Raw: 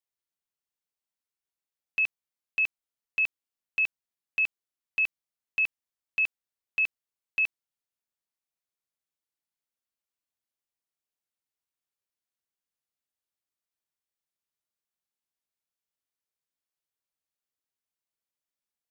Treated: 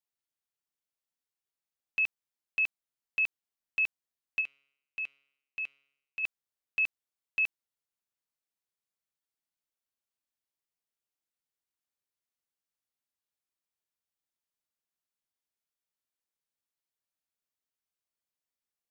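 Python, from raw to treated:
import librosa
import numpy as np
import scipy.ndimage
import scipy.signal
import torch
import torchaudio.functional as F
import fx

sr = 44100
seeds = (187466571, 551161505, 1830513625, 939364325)

y = fx.comb_fb(x, sr, f0_hz=140.0, decay_s=0.82, harmonics='all', damping=0.0, mix_pct=60, at=(4.4, 6.23), fade=0.02)
y = F.gain(torch.from_numpy(y), -2.5).numpy()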